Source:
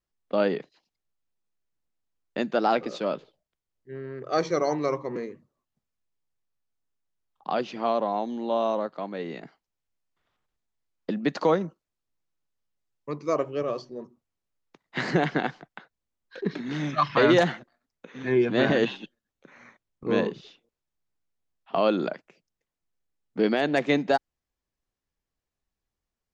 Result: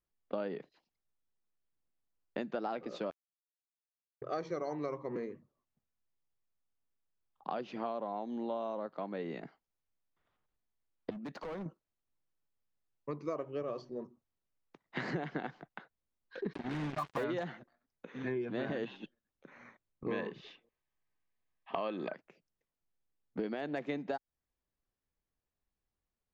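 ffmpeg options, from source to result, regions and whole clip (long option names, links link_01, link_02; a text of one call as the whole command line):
ffmpeg -i in.wav -filter_complex "[0:a]asettb=1/sr,asplit=3[link_01][link_02][link_03];[link_01]atrim=end=3.104[link_04];[link_02]atrim=start=3.1:end=4.22,asetpts=PTS-STARTPTS,afade=type=in:duration=0.004:curve=qsin,afade=type=out:start_time=1.116:duration=0.004:curve=qsin,equalizer=frequency=3100:width=1:gain=-12,acrusher=bits=2:mix=0:aa=0.5[link_05];[link_03]atrim=start=4.216[link_06];[link_04][link_05]acrossfade=duration=0.004:curve1=hsin:curve2=qsin[link_07];[link_07][link_06]acrossfade=duration=0.004:curve1=qsin:curve2=hsin,asettb=1/sr,asplit=3[link_08][link_09][link_10];[link_08]atrim=end=11.104[link_11];[link_09]atrim=start=11.1:end=11.66,asetpts=PTS-STARTPTS,afade=type=in:duration=0.004:curve=qsin,afade=type=out:start_time=0.556:duration=0.004:curve=qsin,agate=range=-7dB:threshold=-30dB:ratio=16:release=100:detection=peak,acompressor=threshold=-28dB:ratio=8:attack=3.2:release=140:knee=1:detection=peak,asoftclip=type=hard:threshold=-35.5dB[link_12];[link_10]atrim=start=11.656[link_13];[link_11][link_12]acrossfade=duration=0.004:curve1=hsin:curve2=qsin[link_14];[link_14][link_13]acrossfade=duration=0.004:curve1=qsin:curve2=hsin,asettb=1/sr,asplit=3[link_15][link_16][link_17];[link_15]atrim=end=16.534[link_18];[link_16]atrim=start=16.53:end=17.24,asetpts=PTS-STARTPTS,afade=type=in:duration=0.004:curve=qsin,afade=type=out:start_time=0.706:duration=0.004:curve=qsin,aemphasis=mode=reproduction:type=50fm,bandreject=frequency=1300:width=6.7,acrusher=bits=4:mix=0:aa=0.5[link_19];[link_17]atrim=start=17.236[link_20];[link_18][link_19]acrossfade=duration=0.004:curve1=hsin:curve2=qsin[link_21];[link_21][link_20]acrossfade=duration=0.004:curve1=qsin:curve2=hsin,asettb=1/sr,asplit=3[link_22][link_23][link_24];[link_22]atrim=end=20.084[link_25];[link_23]atrim=start=20.08:end=22.14,asetpts=PTS-STARTPTS,afade=type=in:duration=0.004:curve=qsin,afade=type=out:start_time=2.056:duration=0.004:curve=qsin,asuperstop=centerf=1400:order=20:qfactor=7.2,equalizer=frequency=1800:width=0.69:gain=9.5[link_26];[link_24]atrim=start=22.136[link_27];[link_25][link_26]acrossfade=duration=0.004:curve1=hsin:curve2=qsin[link_28];[link_28][link_27]acrossfade=duration=0.004:curve1=qsin:curve2=hsin,highshelf=frequency=3600:gain=-10,acompressor=threshold=-31dB:ratio=6,volume=-3dB" out.wav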